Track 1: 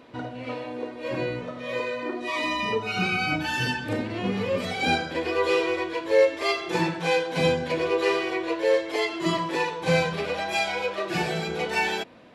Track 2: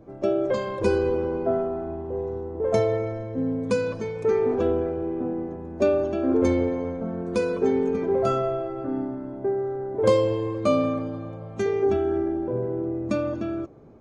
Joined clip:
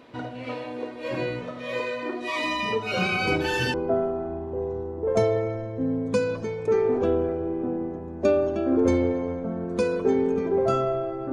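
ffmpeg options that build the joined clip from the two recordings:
-filter_complex "[1:a]asplit=2[a][b];[0:a]apad=whole_dur=11.32,atrim=end=11.32,atrim=end=3.742[c];[b]atrim=start=1.308:end=8.89[d];[a]atrim=start=0.48:end=1.31,asetpts=PTS-STARTPTS,volume=-6.5dB,afade=t=in:d=0.004:c=hsin,afade=t=out:st=0.826:d=0.004:c=hsin,adelay=2910[e];[c][d]acrossfade=d=0.004:c1=hsin:c2=hsin[f];[f][e]amix=inputs=2:normalize=0"

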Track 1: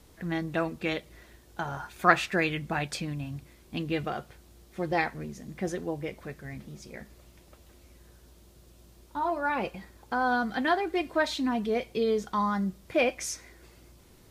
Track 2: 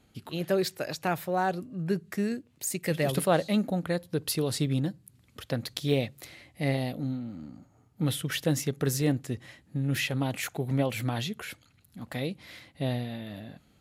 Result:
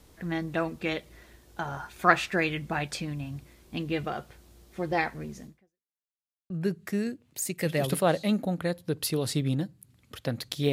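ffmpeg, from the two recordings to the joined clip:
-filter_complex "[0:a]apad=whole_dur=10.72,atrim=end=10.72,asplit=2[a][b];[a]atrim=end=5.98,asetpts=PTS-STARTPTS,afade=t=out:st=5.45:d=0.53:c=exp[c];[b]atrim=start=5.98:end=6.5,asetpts=PTS-STARTPTS,volume=0[d];[1:a]atrim=start=1.75:end=5.97,asetpts=PTS-STARTPTS,afade=t=in:d=0.004:c=hsin[e];[c][d][e]concat=n=3:v=0:a=1"

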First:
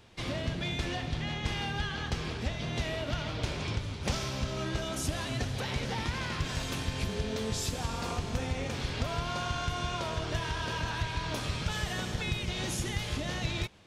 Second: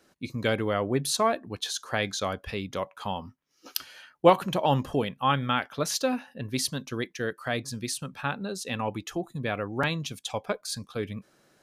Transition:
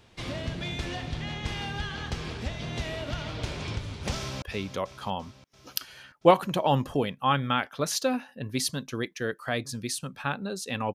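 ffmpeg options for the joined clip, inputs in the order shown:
-filter_complex "[0:a]apad=whole_dur=10.94,atrim=end=10.94,atrim=end=4.422[a];[1:a]atrim=start=2.408:end=8.93[b];[a][b]acrossfade=d=0.004:c1=hsin:c2=hsin,asplit=2[c][d];[d]afade=t=in:st=4.17:d=0.01,afade=t=out:st=4.42:d=0.01,aecho=0:1:340|680|1020|1360|1700|2040|2380|2720:0.281838|0.183195|0.119077|0.0773998|0.0503099|0.0327014|0.0212559|0.0138164[e];[c][e]amix=inputs=2:normalize=0"

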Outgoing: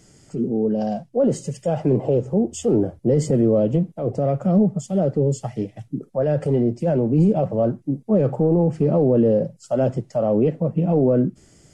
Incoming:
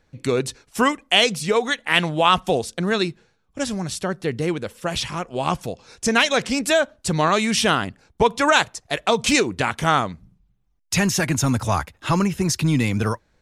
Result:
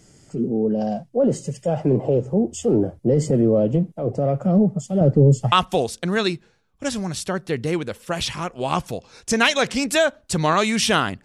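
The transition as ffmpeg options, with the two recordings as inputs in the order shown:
-filter_complex "[0:a]asettb=1/sr,asplit=3[a][b][c];[a]atrim=end=5.014[d];[b]atrim=start=5.01:end=5.52,asetpts=PTS-STARTPTS,afade=t=in:d=0.004:c=qsin,afade=t=out:st=0.506:d=0.004:c=qsin,lowshelf=f=270:g=10[e];[c]atrim=start=5.516[f];[d][e]acrossfade=d=0.004:c1=hsin:c2=qsin[g];[g][f]acrossfade=d=0.004:c1=qsin:c2=hsin,apad=whole_dur=11.24,atrim=end=11.24,atrim=end=5.522[h];[1:a]atrim=start=2.268:end=7.99[i];[h][i]acrossfade=d=0.004:c1=hsin:c2=hsin"

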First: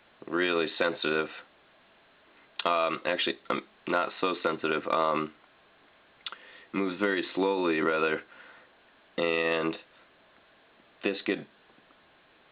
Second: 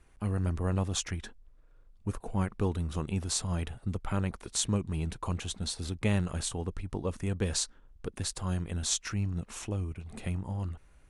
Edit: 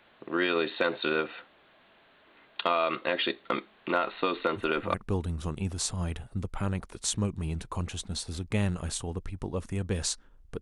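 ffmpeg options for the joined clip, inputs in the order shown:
-filter_complex "[1:a]asplit=2[a][b];[0:a]apad=whole_dur=10.61,atrim=end=10.61,atrim=end=4.942[c];[b]atrim=start=2.448:end=8.12[d];[a]atrim=start=1.45:end=2.45,asetpts=PTS-STARTPTS,volume=-11.5dB,afade=t=in:d=0.004:c=hsin,afade=t=out:st=0.996:d=0.004:c=hsin,adelay=3940[e];[c][d]acrossfade=d=0.004:c1=hsin:c2=hsin[f];[f][e]amix=inputs=2:normalize=0"

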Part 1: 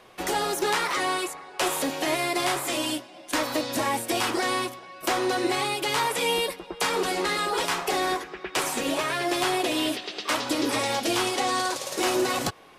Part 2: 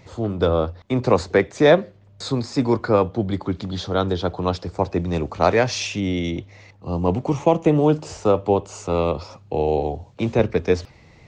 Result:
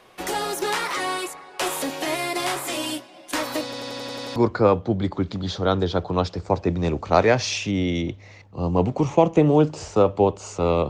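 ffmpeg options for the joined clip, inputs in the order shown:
-filter_complex "[0:a]apad=whole_dur=10.89,atrim=end=10.89,asplit=8[a][b][c][d][e][f][g][h];[a]atrim=end=3.732[i];[b]atrim=start=3.638:end=3.732[j];[c]atrim=start=3.638:end=3.732[k];[d]atrim=start=3.638:end=3.732[l];[e]atrim=start=3.638:end=3.732[m];[f]atrim=start=3.638:end=3.732[n];[g]atrim=start=3.638:end=3.732[o];[h]atrim=start=3.638:end=3.732[p];[1:a]atrim=start=2.648:end=9.18[q];[i][j]acrossfade=d=0.004:c1=hsin:c2=hsin[r];[r][k]acrossfade=d=0.004:c1=hsin:c2=hsin[s];[s][l]acrossfade=d=0.004:c1=hsin:c2=hsin[t];[t][m]acrossfade=d=0.004:c1=hsin:c2=hsin[u];[u][n]acrossfade=d=0.004:c1=hsin:c2=hsin[v];[v][o]acrossfade=d=0.004:c1=hsin:c2=hsin[w];[w][p]acrossfade=d=0.004:c1=hsin:c2=hsin[x];[x][q]acrossfade=d=0.004:c1=hsin:c2=hsin"

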